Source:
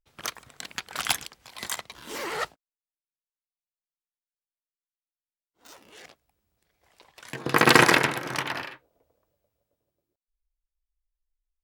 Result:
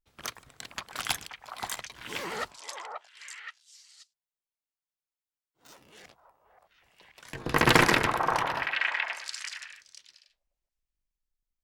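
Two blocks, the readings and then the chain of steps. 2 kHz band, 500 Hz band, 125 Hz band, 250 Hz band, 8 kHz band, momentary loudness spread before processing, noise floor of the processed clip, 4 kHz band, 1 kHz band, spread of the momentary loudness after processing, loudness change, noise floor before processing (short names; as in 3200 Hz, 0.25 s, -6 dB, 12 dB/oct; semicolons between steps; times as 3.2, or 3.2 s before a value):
-3.0 dB, -3.5 dB, -0.5 dB, -3.5 dB, -4.0 dB, 22 LU, under -85 dBFS, -3.0 dB, -1.5 dB, 22 LU, -4.5 dB, under -85 dBFS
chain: octaver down 1 oct, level -2 dB; delay with a stepping band-pass 0.529 s, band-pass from 860 Hz, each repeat 1.4 oct, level -0.5 dB; Doppler distortion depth 0.19 ms; gain -4 dB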